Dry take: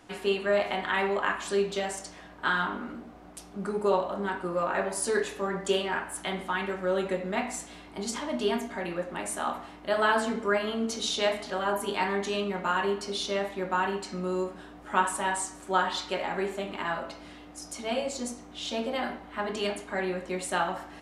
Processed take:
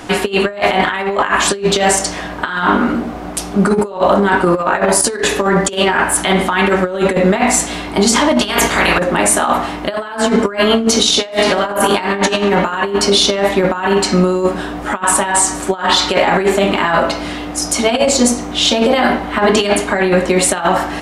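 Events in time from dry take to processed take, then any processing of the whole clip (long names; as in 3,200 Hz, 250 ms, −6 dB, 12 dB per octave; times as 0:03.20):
0:08.40–0:08.98: ceiling on every frequency bin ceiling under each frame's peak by 21 dB
0:11.08–0:12.33: thrown reverb, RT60 2 s, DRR 4.5 dB
whole clip: compressor whose output falls as the input rises −32 dBFS, ratio −0.5; boost into a limiter +21 dB; level −1 dB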